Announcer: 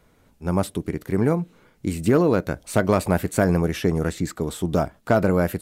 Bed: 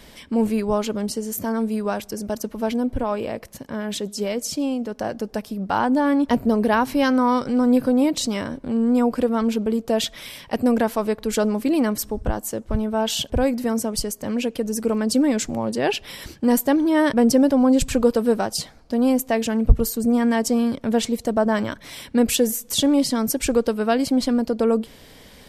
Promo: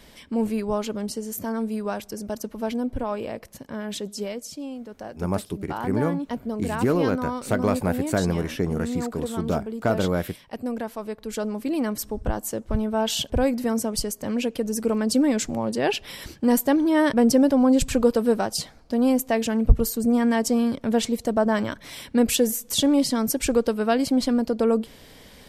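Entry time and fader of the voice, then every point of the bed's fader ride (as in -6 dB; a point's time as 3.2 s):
4.75 s, -4.0 dB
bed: 4.18 s -4 dB
4.5 s -10.5 dB
10.95 s -10.5 dB
12.41 s -1.5 dB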